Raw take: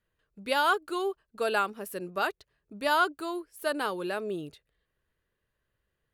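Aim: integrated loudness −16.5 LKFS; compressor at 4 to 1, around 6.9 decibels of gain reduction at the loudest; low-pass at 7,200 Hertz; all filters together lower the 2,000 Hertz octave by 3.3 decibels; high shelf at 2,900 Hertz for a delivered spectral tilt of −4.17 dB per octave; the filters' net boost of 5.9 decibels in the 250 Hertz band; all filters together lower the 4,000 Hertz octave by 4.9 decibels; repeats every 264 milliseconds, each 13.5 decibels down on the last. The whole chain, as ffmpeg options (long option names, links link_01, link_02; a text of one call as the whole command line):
ffmpeg -i in.wav -af "lowpass=7200,equalizer=frequency=250:width_type=o:gain=9,equalizer=frequency=2000:width_type=o:gain=-6.5,highshelf=frequency=2900:gain=7,equalizer=frequency=4000:width_type=o:gain=-9,acompressor=threshold=-29dB:ratio=4,aecho=1:1:264|528:0.211|0.0444,volume=17.5dB" out.wav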